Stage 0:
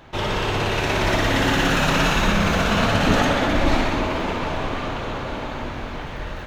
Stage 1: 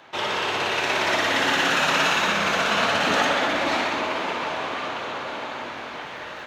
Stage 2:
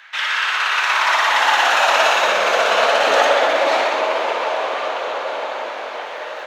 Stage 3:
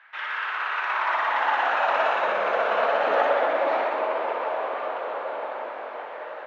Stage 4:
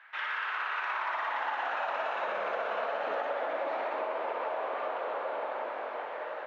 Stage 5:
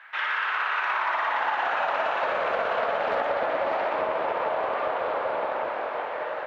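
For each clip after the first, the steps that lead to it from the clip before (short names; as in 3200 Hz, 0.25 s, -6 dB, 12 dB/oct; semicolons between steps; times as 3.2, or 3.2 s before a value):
weighting filter A
high-pass sweep 1700 Hz -> 540 Hz, 0.19–2.37; gain +3.5 dB
LPF 1700 Hz 12 dB/oct; gain -6 dB
compressor, threshold -28 dBFS, peak gain reduction 11 dB; gain -2 dB
Doppler distortion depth 0.18 ms; gain +7 dB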